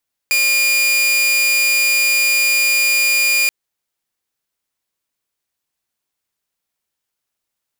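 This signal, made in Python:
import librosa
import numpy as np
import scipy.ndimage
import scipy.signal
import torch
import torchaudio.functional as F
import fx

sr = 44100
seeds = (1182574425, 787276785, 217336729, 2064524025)

y = 10.0 ** (-10.0 / 20.0) * (2.0 * np.mod(2420.0 * (np.arange(round(3.18 * sr)) / sr), 1.0) - 1.0)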